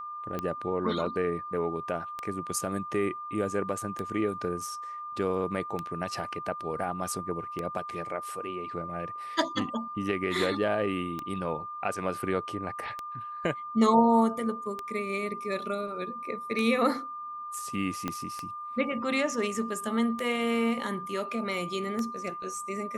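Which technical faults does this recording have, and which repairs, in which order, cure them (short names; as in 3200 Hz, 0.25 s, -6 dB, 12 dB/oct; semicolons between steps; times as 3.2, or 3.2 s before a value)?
tick 33 1/3 rpm -19 dBFS
tone 1200 Hz -36 dBFS
18.08 pop -16 dBFS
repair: de-click; notch 1200 Hz, Q 30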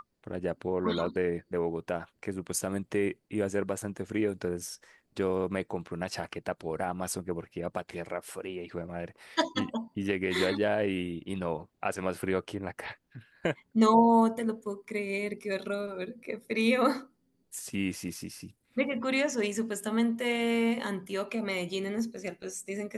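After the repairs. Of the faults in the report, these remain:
18.08 pop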